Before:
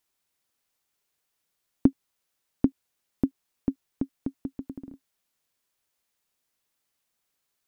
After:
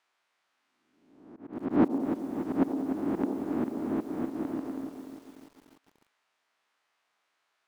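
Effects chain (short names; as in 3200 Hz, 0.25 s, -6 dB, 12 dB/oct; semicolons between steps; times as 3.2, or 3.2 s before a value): spectral swells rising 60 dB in 0.98 s; in parallel at -8 dB: soft clip -13 dBFS, distortion -13 dB; on the sum: LPF 1300 Hz 12 dB/oct; tilt +4.5 dB/oct; notch 520 Hz, Q 12; on a send: band-limited delay 91 ms, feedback 61%, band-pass 450 Hz, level -7.5 dB; on the sum: auto swell 0.109 s; low shelf 430 Hz -9 dB; lo-fi delay 0.295 s, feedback 55%, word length 10-bit, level -9 dB; gain +8.5 dB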